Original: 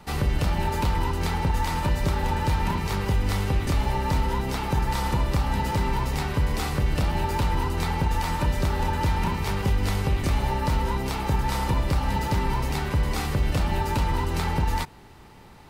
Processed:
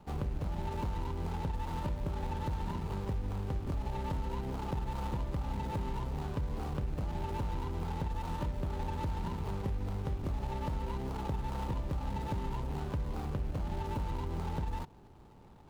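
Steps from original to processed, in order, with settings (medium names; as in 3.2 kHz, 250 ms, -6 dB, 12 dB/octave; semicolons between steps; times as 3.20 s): median filter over 25 samples; compression 3:1, threshold -26 dBFS, peak gain reduction 6.5 dB; trim -6.5 dB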